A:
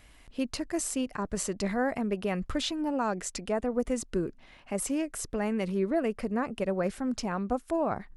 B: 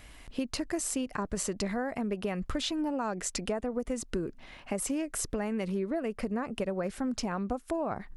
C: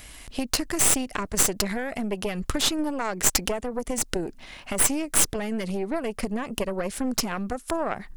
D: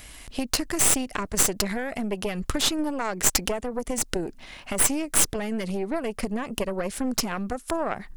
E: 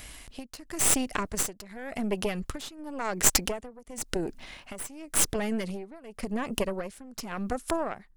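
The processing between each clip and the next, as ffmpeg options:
-af "acompressor=threshold=-34dB:ratio=6,volume=5dB"
-af "highshelf=f=3.8k:g=11,aeval=exprs='0.376*(cos(1*acos(clip(val(0)/0.376,-1,1)))-cos(1*PI/2))+0.0841*(cos(6*acos(clip(val(0)/0.376,-1,1)))-cos(6*PI/2))':c=same,volume=4dB"
-af anull
-af "tremolo=f=0.92:d=0.9"

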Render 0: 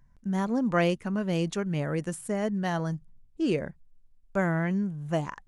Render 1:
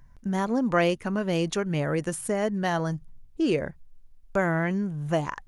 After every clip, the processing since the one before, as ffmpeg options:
-filter_complex "[0:a]equalizer=f=190:t=o:w=0.76:g=-5,bandreject=f=7.7k:w=13,asplit=2[a][b];[b]acompressor=threshold=-34dB:ratio=6,volume=3dB[c];[a][c]amix=inputs=2:normalize=0"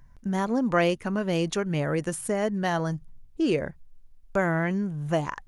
-af anull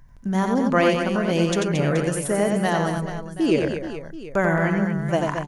-af "aecho=1:1:90|225|427.5|731.2|1187:0.631|0.398|0.251|0.158|0.1,volume=3dB"

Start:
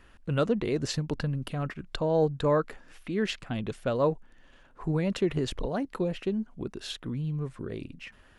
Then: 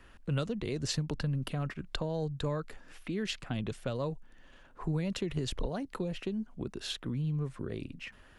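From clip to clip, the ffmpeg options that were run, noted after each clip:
-filter_complex "[0:a]acrossover=split=150|3000[a][b][c];[b]acompressor=threshold=-35dB:ratio=4[d];[a][d][c]amix=inputs=3:normalize=0"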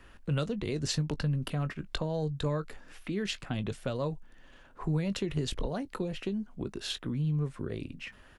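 -filter_complex "[0:a]asplit=2[a][b];[b]adelay=20,volume=-13.5dB[c];[a][c]amix=inputs=2:normalize=0,volume=1.5dB"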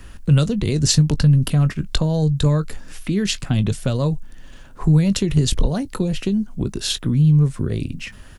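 -af "bass=f=250:g=10,treble=f=4k:g=11,volume=7.5dB"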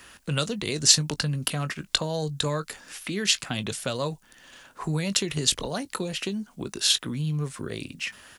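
-af "highpass=f=980:p=1,volume=2dB"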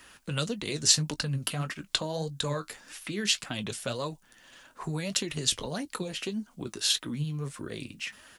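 -af "flanger=delay=3.1:depth=6.6:regen=52:speed=1.7:shape=sinusoidal"

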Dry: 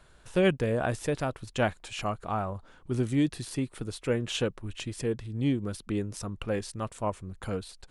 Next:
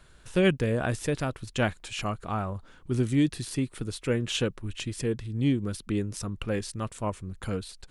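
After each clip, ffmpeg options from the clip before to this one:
-af "equalizer=f=730:t=o:w=1.4:g=-5.5,volume=3dB"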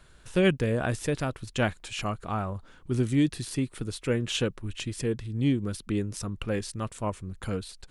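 -af anull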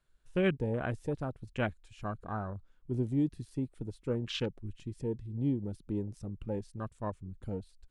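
-af "afwtdn=0.02,volume=-6dB"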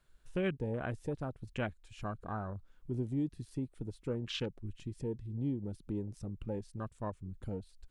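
-af "acompressor=threshold=-53dB:ratio=1.5,volume=5dB"

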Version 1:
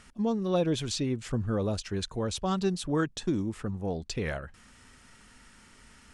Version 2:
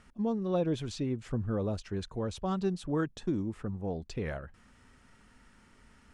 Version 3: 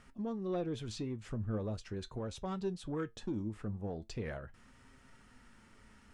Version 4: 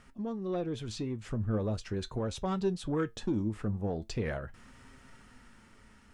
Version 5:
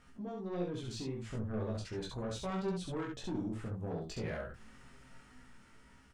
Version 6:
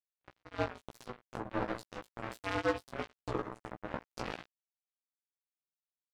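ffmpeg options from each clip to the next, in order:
-af "highshelf=f=2.4k:g=-10,volume=-2.5dB"
-filter_complex "[0:a]asplit=2[a][b];[b]acompressor=threshold=-40dB:ratio=6,volume=1dB[c];[a][c]amix=inputs=2:normalize=0,asoftclip=type=tanh:threshold=-20.5dB,flanger=delay=7.4:depth=2.2:regen=69:speed=0.41:shape=sinusoidal,volume=-3dB"
-af "dynaudnorm=f=370:g=7:m=4.5dB,volume=2dB"
-af "flanger=delay=15.5:depth=2.7:speed=0.35,asoftclip=type=tanh:threshold=-32dB,aecho=1:1:23|68:0.562|0.708,volume=-2dB"
-filter_complex "[0:a]afreqshift=110,acrusher=bits=4:mix=0:aa=0.5,asplit=2[a][b];[b]adelay=16,volume=-4dB[c];[a][c]amix=inputs=2:normalize=0,volume=3.5dB"

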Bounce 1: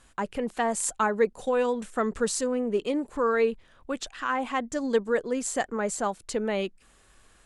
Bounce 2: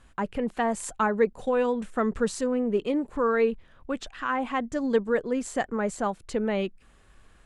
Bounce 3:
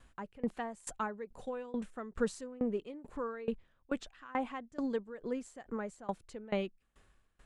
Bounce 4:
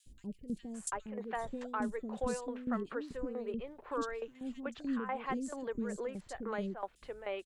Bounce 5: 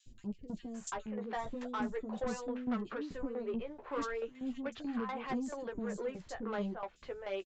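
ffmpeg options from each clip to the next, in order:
-af "bass=f=250:g=5,treble=f=4k:g=-8"
-af "aeval=exprs='val(0)*pow(10,-23*if(lt(mod(2.3*n/s,1),2*abs(2.3)/1000),1-mod(2.3*n/s,1)/(2*abs(2.3)/1000),(mod(2.3*n/s,1)-2*abs(2.3)/1000)/(1-2*abs(2.3)/1000))/20)':c=same,volume=-3dB"
-filter_complex "[0:a]alimiter=level_in=7.5dB:limit=-24dB:level=0:latency=1:release=217,volume=-7.5dB,acrossover=split=380|3600[a][b][c];[a]adelay=60[d];[b]adelay=740[e];[d][e][c]amix=inputs=3:normalize=0,volume=6.5dB"
-af "aresample=16000,asoftclip=type=tanh:threshold=-32.5dB,aresample=44100,flanger=delay=7.7:depth=6.9:regen=-21:speed=0.38:shape=triangular,volume=5.5dB"

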